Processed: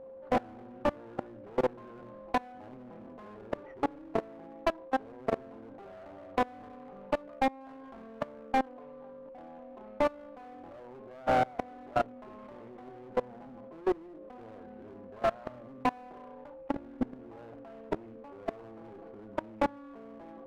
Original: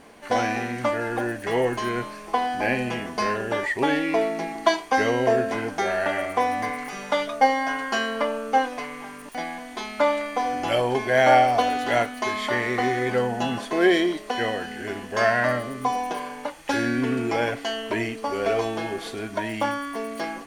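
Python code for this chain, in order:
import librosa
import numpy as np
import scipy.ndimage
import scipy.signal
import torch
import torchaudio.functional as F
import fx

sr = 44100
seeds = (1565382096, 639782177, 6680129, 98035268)

y = scipy.signal.medfilt(x, 25)
y = scipy.signal.sosfilt(scipy.signal.butter(2, 1500.0, 'lowpass', fs=sr, output='sos'), y)
y = fx.hum_notches(y, sr, base_hz=60, count=8)
y = fx.dynamic_eq(y, sr, hz=270.0, q=1.7, threshold_db=-38.0, ratio=4.0, max_db=4)
y = fx.rider(y, sr, range_db=4, speed_s=0.5)
y = y + 10.0 ** (-35.0 / 20.0) * np.sin(2.0 * np.pi * 530.0 * np.arange(len(y)) / sr)
y = fx.clip_asym(y, sr, top_db=-27.5, bottom_db=-14.0)
y = fx.level_steps(y, sr, step_db=24)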